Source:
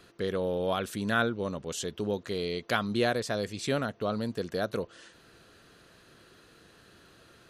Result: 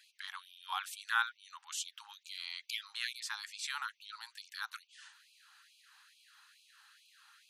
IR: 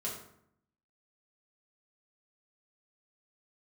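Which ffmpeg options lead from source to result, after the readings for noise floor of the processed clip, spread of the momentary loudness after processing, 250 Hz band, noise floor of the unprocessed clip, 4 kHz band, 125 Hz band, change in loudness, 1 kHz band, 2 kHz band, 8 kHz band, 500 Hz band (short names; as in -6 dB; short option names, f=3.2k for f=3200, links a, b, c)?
-74 dBFS, 17 LU, under -40 dB, -58 dBFS, -2.5 dB, under -40 dB, -8.5 dB, -7.0 dB, -4.0 dB, -2.5 dB, under -40 dB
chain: -af "afftfilt=real='re*gte(b*sr/1024,750*pow(2300/750,0.5+0.5*sin(2*PI*2.3*pts/sr)))':imag='im*gte(b*sr/1024,750*pow(2300/750,0.5+0.5*sin(2*PI*2.3*pts/sr)))':win_size=1024:overlap=0.75,volume=-2.5dB"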